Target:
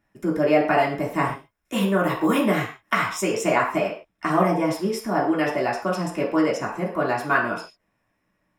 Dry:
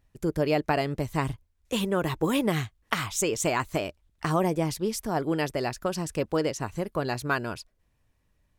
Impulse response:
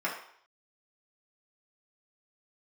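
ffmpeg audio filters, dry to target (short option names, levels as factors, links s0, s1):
-filter_complex "[0:a]asettb=1/sr,asplit=3[s0][s1][s2];[s0]atrim=end=0.754[s3];[s1]atrim=start=0.75:end=2.93,asetpts=PTS-STARTPTS,afade=t=in:d=0.004:c=qsin,afade=t=out:st=2.176:d=0.004:c=qsin,highshelf=f=8700:g=6[s4];[s2]atrim=start=2.926[s5];[s3][s4]acrossfade=d=0.004:c1=hsin:c2=qsin[s6];[s6][s5]acrossfade=d=0.004:c1=qsin:c2=hsin[s7];[1:a]atrim=start_sample=2205,atrim=end_sample=6615[s8];[s7][s8]afir=irnorm=-1:irlink=0,volume=0.841"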